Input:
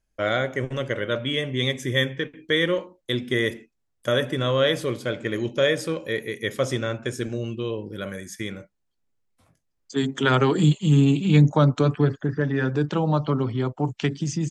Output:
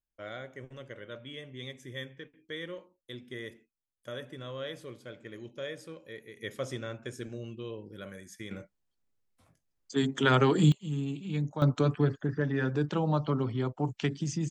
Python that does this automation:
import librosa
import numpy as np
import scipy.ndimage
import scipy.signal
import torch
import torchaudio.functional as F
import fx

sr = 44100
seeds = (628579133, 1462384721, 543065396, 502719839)

y = fx.gain(x, sr, db=fx.steps((0.0, -18.0), (6.37, -11.5), (8.51, -4.0), (10.72, -16.0), (11.62, -6.0)))